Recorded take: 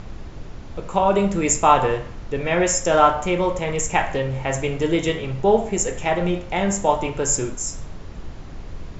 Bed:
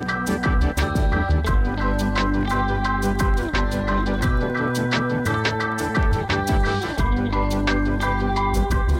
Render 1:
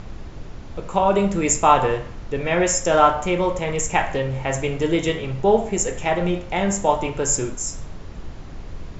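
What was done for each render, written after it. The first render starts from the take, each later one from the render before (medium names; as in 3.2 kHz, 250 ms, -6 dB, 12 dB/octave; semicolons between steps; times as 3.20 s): no audible change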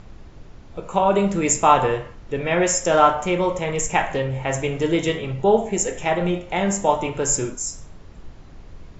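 noise print and reduce 7 dB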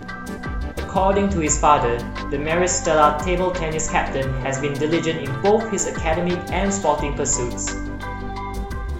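add bed -8 dB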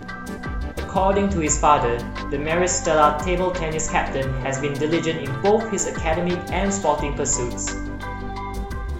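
trim -1 dB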